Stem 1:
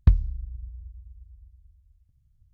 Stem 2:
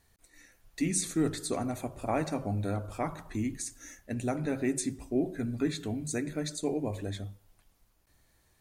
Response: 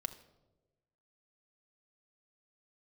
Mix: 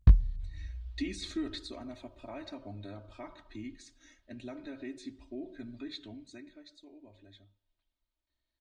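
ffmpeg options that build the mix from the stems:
-filter_complex "[0:a]flanger=delay=17.5:depth=6.8:speed=1.1,volume=0.5dB[a];[1:a]alimiter=limit=-23.5dB:level=0:latency=1:release=99,lowpass=f=3.8k:t=q:w=2.8,aecho=1:1:3.2:0.98,adelay=200,volume=-6.5dB,afade=t=out:st=1.34:d=0.46:silence=0.446684,afade=t=out:st=5.89:d=0.77:silence=0.298538[b];[a][b]amix=inputs=2:normalize=0"

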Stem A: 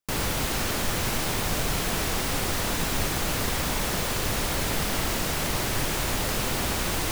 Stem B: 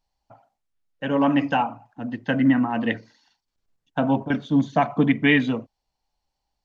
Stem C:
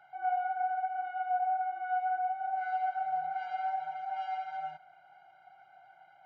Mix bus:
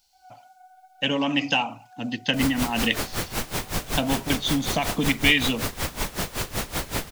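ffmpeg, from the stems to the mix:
-filter_complex "[0:a]aeval=exprs='val(0)*pow(10,-19*(0.5-0.5*cos(2*PI*5.3*n/s))/20)':c=same,adelay=2250,volume=2.5dB[a];[1:a]acompressor=threshold=-22dB:ratio=5,aexciter=amount=5.8:drive=7.3:freq=2.3k,volume=0dB[b];[2:a]volume=-20dB[c];[a][b][c]amix=inputs=3:normalize=0"

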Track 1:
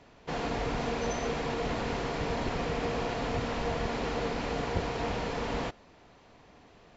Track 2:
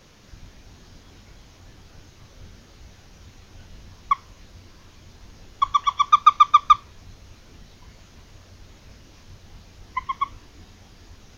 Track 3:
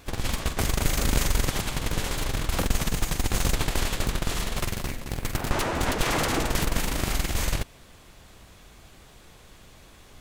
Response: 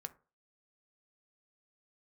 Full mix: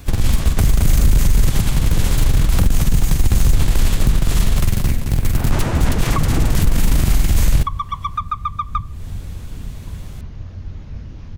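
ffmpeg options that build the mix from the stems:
-filter_complex "[1:a]lowpass=f=2k:p=1,adelay=2050,volume=2.5dB,asplit=2[a][b];[b]volume=-5dB[c];[2:a]acontrast=88,highshelf=f=6.5k:g=8,volume=-3dB[d];[3:a]atrim=start_sample=2205[e];[c][e]afir=irnorm=-1:irlink=0[f];[a][d][f]amix=inputs=3:normalize=0,bass=f=250:g=13,treble=f=4k:g=-1,acrossover=split=200[g][h];[h]acompressor=threshold=-21dB:ratio=6[i];[g][i]amix=inputs=2:normalize=0,alimiter=limit=-5.5dB:level=0:latency=1:release=11"

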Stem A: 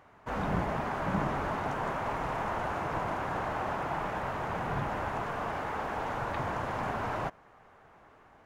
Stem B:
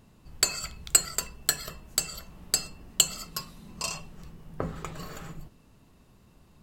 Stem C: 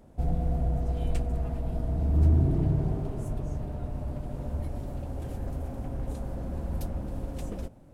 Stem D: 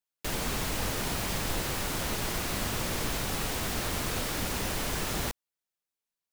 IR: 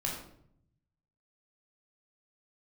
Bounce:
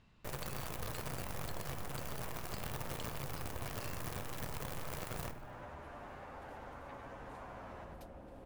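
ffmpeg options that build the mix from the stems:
-filter_complex "[0:a]asplit=2[a][b];[b]adelay=9.6,afreqshift=-0.37[c];[a][c]amix=inputs=2:normalize=1,adelay=550,volume=-13.5dB,asplit=2[d][e];[e]volume=-5.5dB[f];[1:a]lowpass=2.8k,equalizer=f=500:w=0.33:g=-11,volume=3dB[g];[2:a]bass=f=250:g=-8,treble=f=4k:g=-10,adelay=1200,volume=-6.5dB[h];[3:a]equalizer=f=125:t=o:w=1:g=11,equalizer=f=250:t=o:w=1:g=-3,equalizer=f=500:t=o:w=1:g=5,equalizer=f=1k:t=o:w=1:g=4,equalizer=f=4k:t=o:w=1:g=-9,equalizer=f=8k:t=o:w=1:g=-6,acrusher=bits=5:dc=4:mix=0:aa=0.000001,volume=-10dB,asplit=3[i][j][k];[j]volume=-13.5dB[l];[k]volume=-20.5dB[m];[d][g][h]amix=inputs=3:normalize=0,lowshelf=f=390:g=-8.5,acompressor=threshold=-45dB:ratio=6,volume=0dB[n];[4:a]atrim=start_sample=2205[o];[l][o]afir=irnorm=-1:irlink=0[p];[f][m]amix=inputs=2:normalize=0,aecho=0:1:100|200|300|400|500|600:1|0.43|0.185|0.0795|0.0342|0.0147[q];[i][n][p][q]amix=inputs=4:normalize=0,acompressor=threshold=-42dB:ratio=2"

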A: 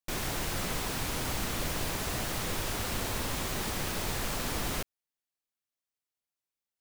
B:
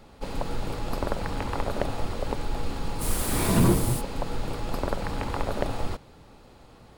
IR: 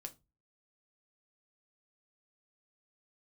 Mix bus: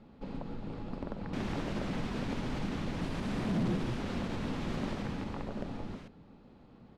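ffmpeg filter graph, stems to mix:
-filter_complex "[0:a]alimiter=level_in=4dB:limit=-24dB:level=0:latency=1:release=98,volume=-4dB,adelay=1250,volume=-2.5dB,afade=t=out:st=4.83:d=0.63:silence=0.266073[a];[1:a]acompressor=threshold=-31dB:ratio=2,volume=-10.5dB[b];[a][b]amix=inputs=2:normalize=0,lowpass=3.7k,equalizer=f=210:w=0.97:g=12.5,asoftclip=type=hard:threshold=-26.5dB"

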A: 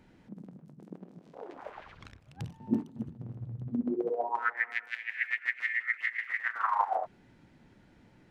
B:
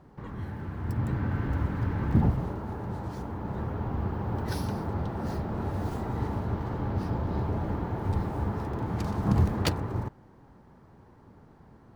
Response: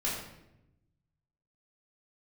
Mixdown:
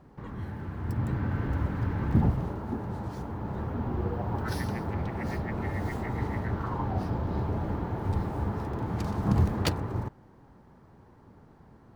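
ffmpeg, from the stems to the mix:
-filter_complex "[0:a]lowpass=f=1.1k:p=1,volume=-7dB[a];[1:a]volume=-0.5dB[b];[a][b]amix=inputs=2:normalize=0"

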